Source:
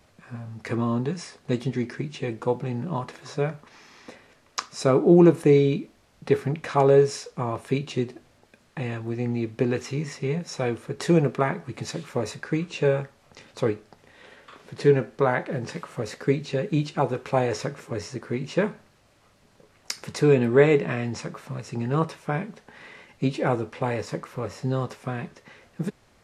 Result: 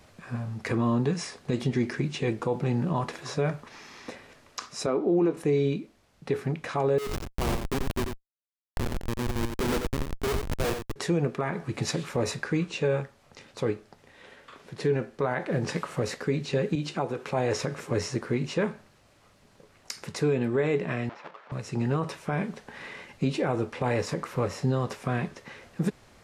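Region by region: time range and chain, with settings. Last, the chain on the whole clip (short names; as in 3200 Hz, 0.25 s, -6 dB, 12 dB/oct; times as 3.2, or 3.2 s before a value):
4.86–5.37 HPF 200 Hz 24 dB/oct + air absorption 100 m
6.98–10.96 HPF 310 Hz + Schmitt trigger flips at -27.5 dBFS + echo 89 ms -6.5 dB
16.75–17.29 compressor 2:1, threshold -33 dBFS + HPF 130 Hz
21.09–21.52 half-waves squared off + HPF 770 Hz + tape spacing loss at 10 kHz 41 dB
whole clip: vocal rider within 4 dB 0.5 s; limiter -16.5 dBFS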